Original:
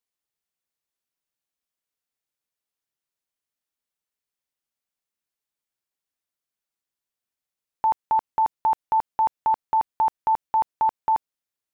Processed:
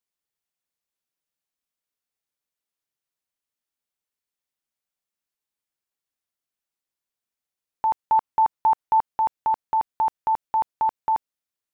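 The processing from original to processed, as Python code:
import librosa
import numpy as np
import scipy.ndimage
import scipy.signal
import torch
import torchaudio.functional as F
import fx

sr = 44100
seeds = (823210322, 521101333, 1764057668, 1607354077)

y = fx.dynamic_eq(x, sr, hz=1100.0, q=1.1, threshold_db=-32.0, ratio=4.0, max_db=4, at=(7.97, 9.06))
y = y * librosa.db_to_amplitude(-1.0)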